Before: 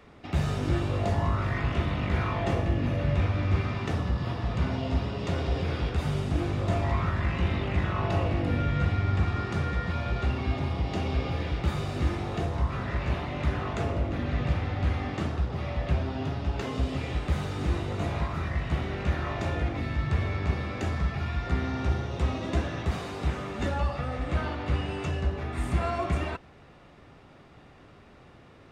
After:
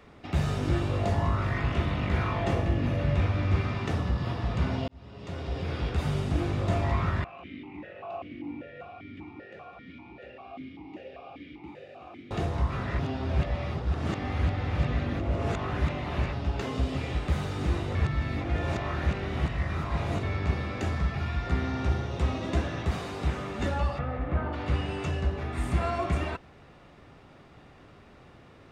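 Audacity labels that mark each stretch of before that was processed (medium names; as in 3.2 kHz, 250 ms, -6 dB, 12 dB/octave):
4.880000	6.000000	fade in
7.240000	12.310000	stepped vowel filter 5.1 Hz
12.990000	16.330000	reverse
17.950000	20.230000	reverse
23.980000	24.520000	low-pass 2.5 kHz -> 1.4 kHz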